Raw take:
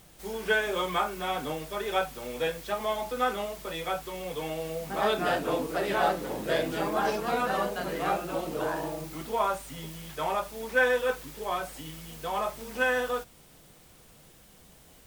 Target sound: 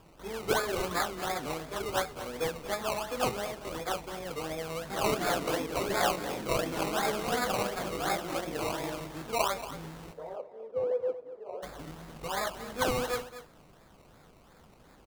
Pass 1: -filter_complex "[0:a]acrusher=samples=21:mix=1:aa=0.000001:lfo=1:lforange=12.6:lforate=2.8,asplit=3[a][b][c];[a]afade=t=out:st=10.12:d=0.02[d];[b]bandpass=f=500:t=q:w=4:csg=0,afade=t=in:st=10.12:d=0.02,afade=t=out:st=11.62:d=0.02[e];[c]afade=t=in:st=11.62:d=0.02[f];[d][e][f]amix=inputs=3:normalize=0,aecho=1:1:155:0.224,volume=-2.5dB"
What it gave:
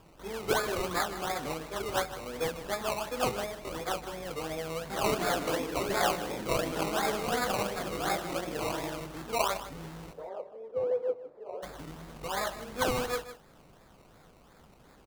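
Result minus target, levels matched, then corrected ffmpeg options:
echo 75 ms early
-filter_complex "[0:a]acrusher=samples=21:mix=1:aa=0.000001:lfo=1:lforange=12.6:lforate=2.8,asplit=3[a][b][c];[a]afade=t=out:st=10.12:d=0.02[d];[b]bandpass=f=500:t=q:w=4:csg=0,afade=t=in:st=10.12:d=0.02,afade=t=out:st=11.62:d=0.02[e];[c]afade=t=in:st=11.62:d=0.02[f];[d][e][f]amix=inputs=3:normalize=0,aecho=1:1:230:0.224,volume=-2.5dB"

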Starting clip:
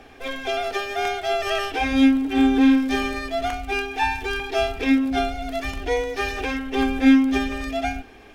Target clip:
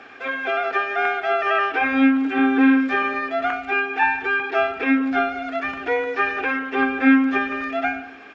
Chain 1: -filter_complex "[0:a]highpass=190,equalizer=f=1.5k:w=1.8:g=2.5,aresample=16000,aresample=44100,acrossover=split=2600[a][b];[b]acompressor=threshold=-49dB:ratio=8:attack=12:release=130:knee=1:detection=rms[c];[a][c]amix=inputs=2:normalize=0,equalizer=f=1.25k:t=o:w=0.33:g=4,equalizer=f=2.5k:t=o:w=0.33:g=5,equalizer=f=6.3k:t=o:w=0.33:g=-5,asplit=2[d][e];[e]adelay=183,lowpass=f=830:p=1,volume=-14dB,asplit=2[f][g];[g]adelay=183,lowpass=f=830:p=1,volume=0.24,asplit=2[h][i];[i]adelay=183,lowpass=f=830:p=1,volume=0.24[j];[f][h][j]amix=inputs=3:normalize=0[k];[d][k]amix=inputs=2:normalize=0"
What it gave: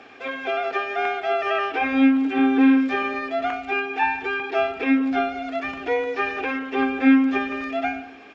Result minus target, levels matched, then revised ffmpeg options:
2000 Hz band -3.5 dB
-filter_complex "[0:a]highpass=190,equalizer=f=1.5k:w=1.8:g=10,aresample=16000,aresample=44100,acrossover=split=2600[a][b];[b]acompressor=threshold=-49dB:ratio=8:attack=12:release=130:knee=1:detection=rms[c];[a][c]amix=inputs=2:normalize=0,equalizer=f=1.25k:t=o:w=0.33:g=4,equalizer=f=2.5k:t=o:w=0.33:g=5,equalizer=f=6.3k:t=o:w=0.33:g=-5,asplit=2[d][e];[e]adelay=183,lowpass=f=830:p=1,volume=-14dB,asplit=2[f][g];[g]adelay=183,lowpass=f=830:p=1,volume=0.24,asplit=2[h][i];[i]adelay=183,lowpass=f=830:p=1,volume=0.24[j];[f][h][j]amix=inputs=3:normalize=0[k];[d][k]amix=inputs=2:normalize=0"

